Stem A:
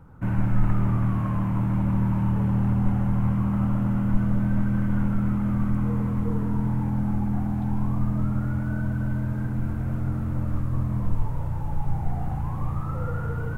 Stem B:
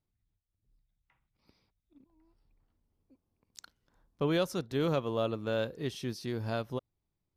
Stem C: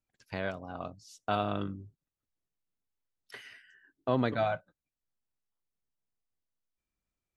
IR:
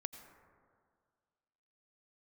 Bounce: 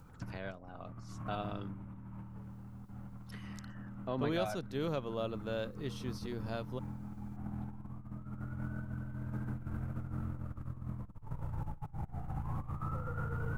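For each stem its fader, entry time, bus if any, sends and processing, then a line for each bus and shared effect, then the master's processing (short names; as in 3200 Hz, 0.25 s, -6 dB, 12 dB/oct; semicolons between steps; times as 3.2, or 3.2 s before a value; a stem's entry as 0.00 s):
-13.0 dB, 0.00 s, no send, bell 1300 Hz +5.5 dB 0.27 oct; negative-ratio compressor -28 dBFS, ratio -0.5
-6.0 dB, 0.00 s, no send, dry
-9.0 dB, 0.00 s, no send, upward compressor, threshold -42 dBFS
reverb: off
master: dry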